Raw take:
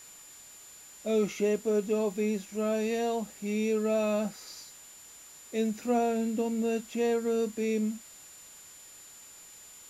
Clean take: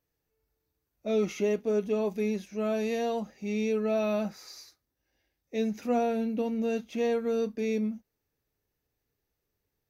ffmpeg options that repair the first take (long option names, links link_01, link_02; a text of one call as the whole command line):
ffmpeg -i in.wav -af "bandreject=frequency=7100:width=30,afwtdn=0.0022" out.wav